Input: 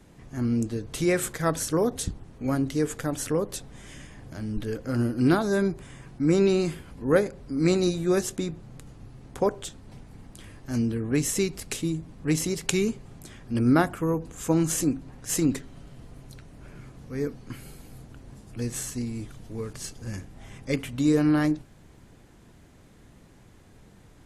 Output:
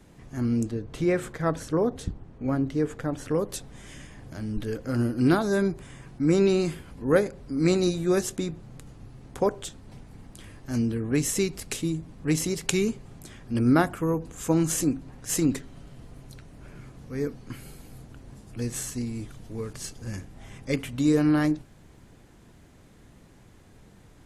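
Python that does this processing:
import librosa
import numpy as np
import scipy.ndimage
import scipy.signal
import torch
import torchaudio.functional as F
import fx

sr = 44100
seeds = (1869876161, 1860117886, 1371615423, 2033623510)

y = fx.lowpass(x, sr, hz=1700.0, slope=6, at=(0.71, 3.31))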